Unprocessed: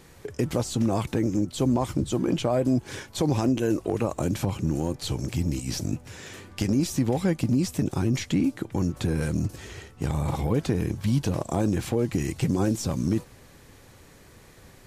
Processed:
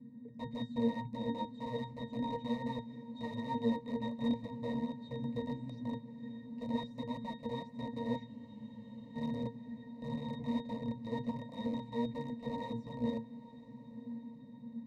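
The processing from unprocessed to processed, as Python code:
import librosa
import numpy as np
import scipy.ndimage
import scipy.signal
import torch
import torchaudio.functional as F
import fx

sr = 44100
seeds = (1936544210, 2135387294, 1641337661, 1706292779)

y = fx.high_shelf(x, sr, hz=3100.0, db=-11.5)
y = y + 0.6 * np.pad(y, (int(7.0 * sr / 1000.0), 0))[:len(y)]
y = (np.mod(10.0 ** (19.5 / 20.0) * y + 1.0, 2.0) - 1.0) / 10.0 ** (19.5 / 20.0)
y = fx.fixed_phaser(y, sr, hz=380.0, stages=6)
y = fx.dmg_noise_band(y, sr, seeds[0], low_hz=150.0, high_hz=260.0, level_db=-40.0)
y = fx.octave_resonator(y, sr, note='A#', decay_s=0.21)
y = fx.echo_diffused(y, sr, ms=952, feedback_pct=55, wet_db=-15.5)
y = fx.spec_freeze(y, sr, seeds[1], at_s=8.29, hold_s=0.87)
y = fx.upward_expand(y, sr, threshold_db=-47.0, expansion=1.5)
y = y * 10.0 ** (7.5 / 20.0)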